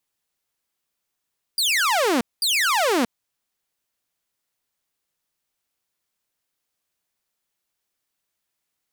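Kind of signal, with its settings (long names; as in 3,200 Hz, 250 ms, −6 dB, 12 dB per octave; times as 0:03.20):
repeated falling chirps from 4,900 Hz, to 220 Hz, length 0.63 s saw, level −15 dB, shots 2, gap 0.21 s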